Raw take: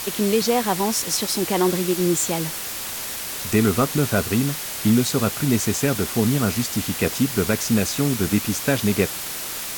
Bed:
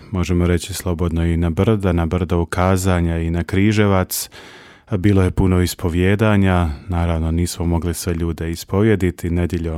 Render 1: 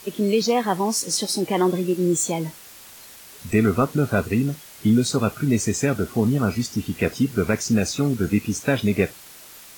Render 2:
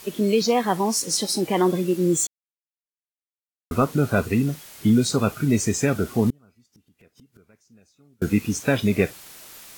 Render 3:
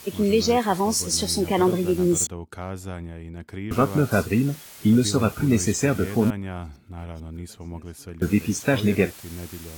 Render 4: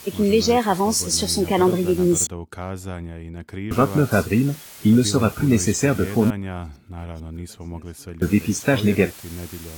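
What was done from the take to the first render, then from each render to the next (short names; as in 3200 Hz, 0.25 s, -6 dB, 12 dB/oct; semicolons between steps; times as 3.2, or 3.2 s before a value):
noise print and reduce 14 dB
2.27–3.71 mute; 6.3–8.22 flipped gate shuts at -23 dBFS, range -35 dB
add bed -17.5 dB
gain +2.5 dB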